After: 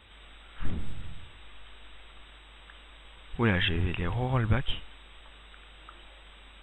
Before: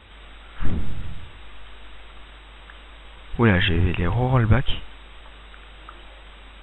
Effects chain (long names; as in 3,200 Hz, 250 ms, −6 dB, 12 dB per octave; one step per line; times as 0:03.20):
high-shelf EQ 3,500 Hz +8.5 dB
level −8.5 dB